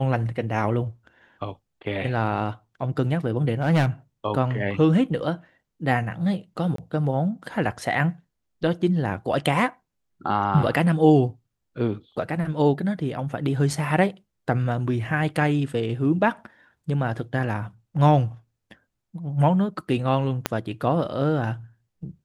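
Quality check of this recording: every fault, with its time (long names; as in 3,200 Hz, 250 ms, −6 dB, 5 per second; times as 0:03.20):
0:03.52–0:03.86: clipping −15.5 dBFS
0:06.76–0:06.78: drop-out 23 ms
0:13.73: drop-out 3.5 ms
0:20.46: click −6 dBFS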